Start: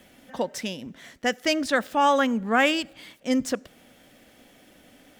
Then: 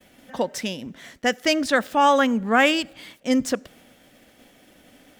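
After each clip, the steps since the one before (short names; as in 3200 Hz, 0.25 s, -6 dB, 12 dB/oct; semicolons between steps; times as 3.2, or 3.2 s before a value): expander -51 dBFS; gain +3 dB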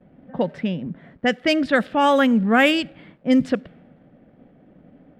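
crackle 370/s -44 dBFS; low-pass opened by the level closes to 880 Hz, open at -13.5 dBFS; fifteen-band EQ 160 Hz +11 dB, 1000 Hz -5 dB, 6300 Hz -10 dB; gain +2 dB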